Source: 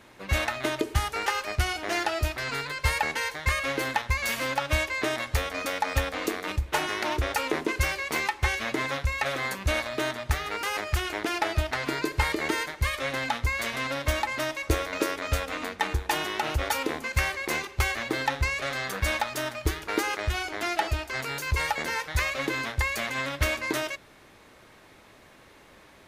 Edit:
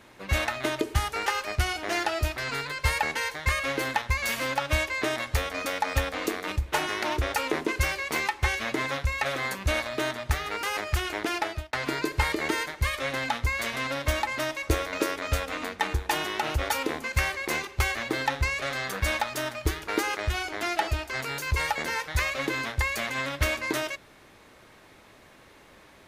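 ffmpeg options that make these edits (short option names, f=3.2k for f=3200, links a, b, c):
-filter_complex "[0:a]asplit=2[a][b];[a]atrim=end=11.73,asetpts=PTS-STARTPTS,afade=t=out:st=11.35:d=0.38[c];[b]atrim=start=11.73,asetpts=PTS-STARTPTS,afade=t=in:d=0.004:c=hsin[d];[c][d]concat=n=2:v=0:a=1"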